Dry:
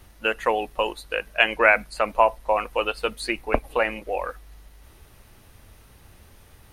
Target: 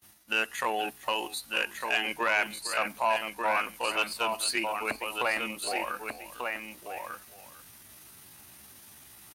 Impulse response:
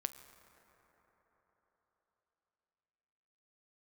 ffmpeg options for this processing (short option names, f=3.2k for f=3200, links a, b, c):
-filter_complex "[0:a]highshelf=f=4.4k:g=12,asplit=2[a][b];[b]aecho=0:1:327:0.168[c];[a][c]amix=inputs=2:normalize=0,alimiter=limit=-10dB:level=0:latency=1:release=94,asplit=2[d][e];[e]aecho=0:1:859:0.501[f];[d][f]amix=inputs=2:normalize=0,asoftclip=type=tanh:threshold=-12.5dB,highpass=160,agate=range=-25dB:threshold=-50dB:ratio=16:detection=peak,atempo=0.72,equalizer=f=490:w=2.9:g=-9.5,volume=-2.5dB"